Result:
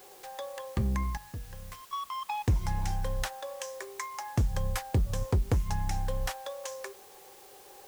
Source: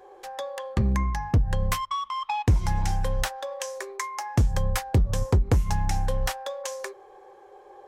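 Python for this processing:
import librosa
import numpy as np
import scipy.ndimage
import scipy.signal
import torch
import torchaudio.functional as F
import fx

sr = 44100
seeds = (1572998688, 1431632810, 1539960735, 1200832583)

p1 = fx.comb_fb(x, sr, f0_hz=240.0, decay_s=1.4, harmonics='all', damping=0.0, mix_pct=80, at=(1.17, 1.93))
p2 = fx.quant_dither(p1, sr, seeds[0], bits=6, dither='triangular')
p3 = p1 + (p2 * librosa.db_to_amplitude(-11.0))
y = p3 * librosa.db_to_amplitude(-8.0)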